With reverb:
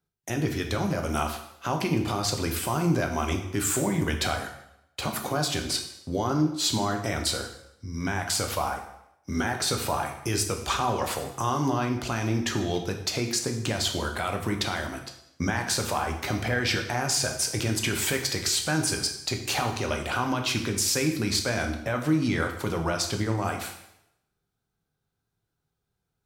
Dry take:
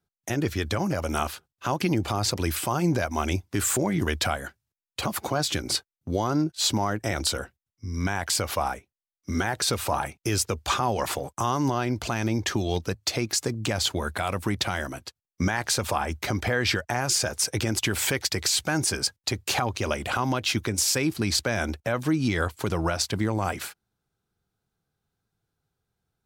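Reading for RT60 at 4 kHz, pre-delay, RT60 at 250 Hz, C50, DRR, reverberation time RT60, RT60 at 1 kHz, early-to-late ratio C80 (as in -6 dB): 0.75 s, 6 ms, 0.75 s, 7.5 dB, 3.5 dB, 0.80 s, 0.80 s, 10.0 dB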